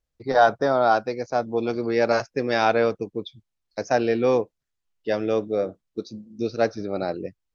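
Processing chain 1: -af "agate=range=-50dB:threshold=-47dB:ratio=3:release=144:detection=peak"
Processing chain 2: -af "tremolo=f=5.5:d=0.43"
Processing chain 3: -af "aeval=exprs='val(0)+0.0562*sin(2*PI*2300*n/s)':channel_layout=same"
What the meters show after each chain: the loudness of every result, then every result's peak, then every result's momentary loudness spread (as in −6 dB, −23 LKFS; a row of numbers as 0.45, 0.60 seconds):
−23.5, −26.0, −22.0 LKFS; −5.5, −7.5, −5.0 dBFS; 16, 14, 6 LU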